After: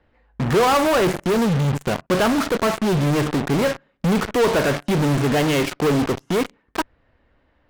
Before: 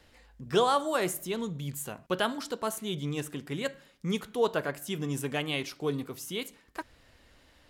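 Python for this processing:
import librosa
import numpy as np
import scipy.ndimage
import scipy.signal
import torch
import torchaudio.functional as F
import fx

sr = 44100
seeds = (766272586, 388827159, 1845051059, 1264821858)

p1 = scipy.signal.sosfilt(scipy.signal.butter(2, 1700.0, 'lowpass', fs=sr, output='sos'), x)
p2 = fx.fuzz(p1, sr, gain_db=54.0, gate_db=-47.0)
y = p1 + (p2 * 10.0 ** (-5.0 / 20.0))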